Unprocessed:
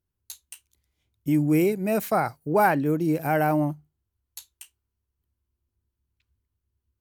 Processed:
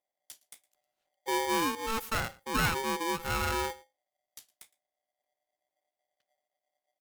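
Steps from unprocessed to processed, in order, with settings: on a send: delay 113 ms -23.5 dB; on the sum: polarity switched at an audio rate 670 Hz; trim -8.5 dB

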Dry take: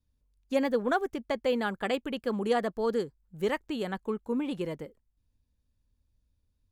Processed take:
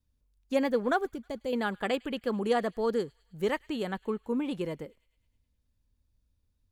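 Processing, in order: 1.05–1.53 s: peaking EQ 1.5 kHz -14.5 dB 2.7 oct; feedback echo behind a high-pass 105 ms, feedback 62%, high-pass 2.1 kHz, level -22.5 dB

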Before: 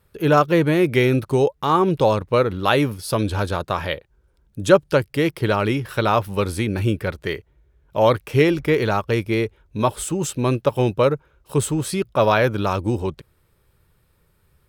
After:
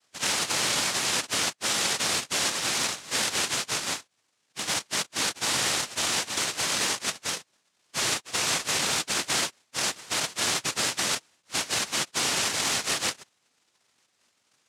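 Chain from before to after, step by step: frequency axis rescaled in octaves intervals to 118%; integer overflow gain 20.5 dB; noise-vocoded speech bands 1

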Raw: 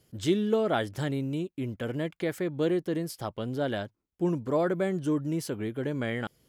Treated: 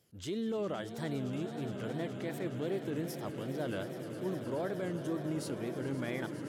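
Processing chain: transient shaper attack -6 dB, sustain -1 dB; peak limiter -23.5 dBFS, peak gain reduction 9 dB; high-pass 60 Hz; bass shelf 170 Hz -3 dB; on a send: echo with a slow build-up 104 ms, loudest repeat 8, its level -15 dB; on the sum: wow and flutter 140 cents; trim -5 dB

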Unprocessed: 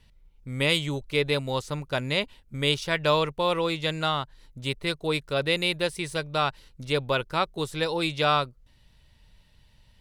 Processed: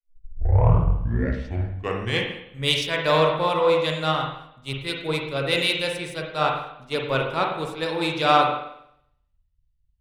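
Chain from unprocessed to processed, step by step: tape start-up on the opening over 2.51 s; spring tank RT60 1.3 s, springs 44/52 ms, chirp 65 ms, DRR 0.5 dB; in parallel at -3.5 dB: saturation -17.5 dBFS, distortion -15 dB; on the sum: three bands expanded up and down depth 100%; trim -4 dB

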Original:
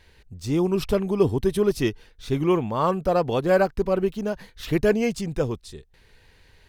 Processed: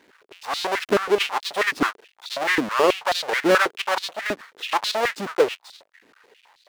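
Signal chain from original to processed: square wave that keeps the level; overdrive pedal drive 3 dB, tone 3 kHz, clips at -6.5 dBFS; step-sequenced high-pass 9.3 Hz 280–4000 Hz; trim -1.5 dB

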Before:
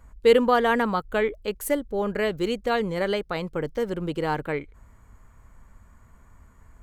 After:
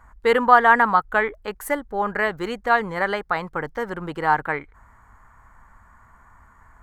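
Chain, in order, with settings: high-order bell 1.2 kHz +12.5 dB; trim -2.5 dB

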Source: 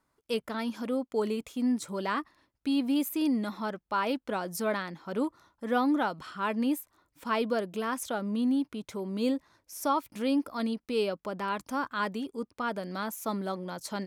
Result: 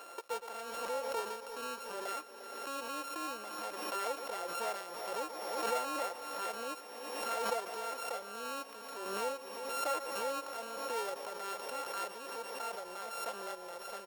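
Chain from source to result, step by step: sorted samples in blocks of 32 samples; ladder high-pass 430 Hz, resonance 50%; peaking EQ 950 Hz +3.5 dB 0.53 oct; comb 5.7 ms, depth 32%; in parallel at -7 dB: companded quantiser 4-bit; on the sum: multi-head delay 117 ms, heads first and third, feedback 74%, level -18.5 dB; swell ahead of each attack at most 33 dB/s; trim -5.5 dB

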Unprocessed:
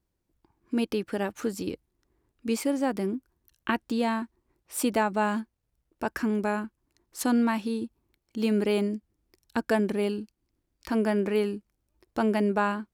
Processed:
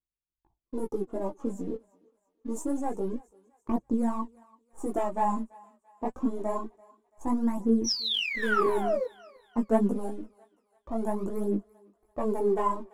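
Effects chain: partial rectifier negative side -3 dB; Chebyshev band-stop 1.1–6.6 kHz, order 4; painted sound fall, 7.84–9.06 s, 470–6000 Hz -29 dBFS; level-controlled noise filter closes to 1.5 kHz, open at -22.5 dBFS; waveshaping leveller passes 1; chorus voices 4, 1.2 Hz, delay 19 ms, depth 3.7 ms; gate with hold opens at -56 dBFS; phaser 0.26 Hz, delay 4.9 ms, feedback 60%; thinning echo 337 ms, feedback 48%, high-pass 650 Hz, level -22 dB; trim -1.5 dB

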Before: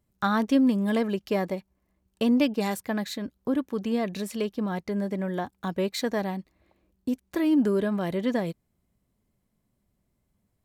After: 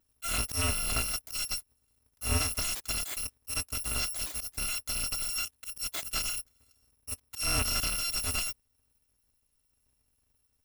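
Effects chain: bit-reversed sample order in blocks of 256 samples; slow attack 130 ms; slew-rate limiter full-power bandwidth 250 Hz

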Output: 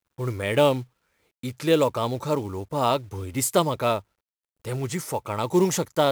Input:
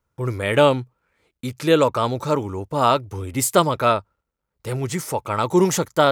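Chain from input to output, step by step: dynamic bell 1.4 kHz, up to -7 dB, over -35 dBFS, Q 2.5; companded quantiser 6-bit; trim -3.5 dB

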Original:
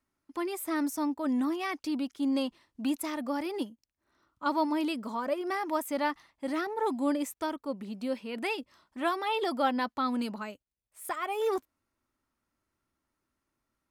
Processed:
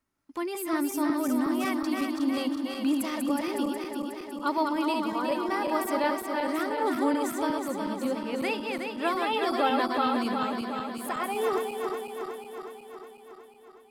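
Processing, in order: backward echo that repeats 183 ms, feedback 79%, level -4 dB; trim +1 dB

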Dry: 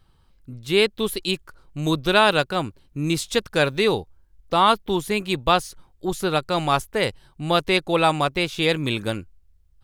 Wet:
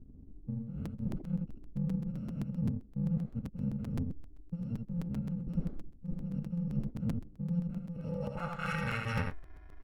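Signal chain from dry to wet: bit-reversed sample order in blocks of 128 samples; treble shelf 12 kHz +5.5 dB; reverse; compression 4:1, threshold -31 dBFS, peak gain reduction 18.5 dB; reverse; low-pass sweep 260 Hz -> 1.8 kHz, 7.86–8.72 s; on a send: delay 80 ms -4.5 dB; on the sum: crackling interface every 0.13 s, samples 256, repeat, from 0.85 s; trim +6.5 dB

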